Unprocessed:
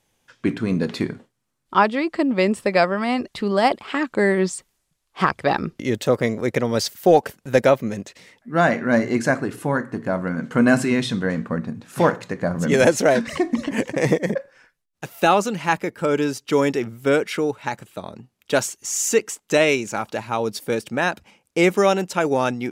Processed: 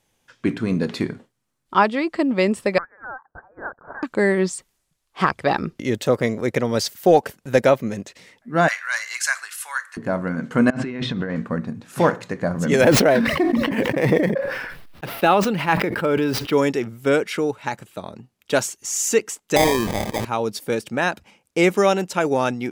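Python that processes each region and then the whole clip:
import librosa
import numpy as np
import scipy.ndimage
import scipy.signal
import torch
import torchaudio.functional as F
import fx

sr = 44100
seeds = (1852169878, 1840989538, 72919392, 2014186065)

y = fx.chain(x, sr, fx.cheby_ripple_highpass(hz=2000.0, ripple_db=3),
    fx.freq_invert(carrier_hz=3600), at=(2.78, 4.03))
y = fx.chain(y, sr, fx.highpass(hz=1200.0, slope=24),
    fx.high_shelf(hz=3200.0, db=12.0), at=(8.68, 9.97))
y = fx.chain(y, sr, fx.law_mismatch(coded='A'),
    fx.lowpass(hz=3000.0, slope=12),
    fx.over_compress(threshold_db=-27.0, ratio=-1.0), at=(10.7, 11.36))
y = fx.chain(y, sr, fx.median_filter(points=5),
    fx.peak_eq(hz=6700.0, db=-11.0, octaves=0.64),
    fx.sustainer(db_per_s=38.0), at=(12.81, 16.58))
y = fx.chain(y, sr, fx.high_shelf(hz=3700.0, db=-11.0),
    fx.sample_hold(seeds[0], rate_hz=1400.0, jitter_pct=0),
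    fx.sustainer(db_per_s=35.0), at=(19.56, 20.25))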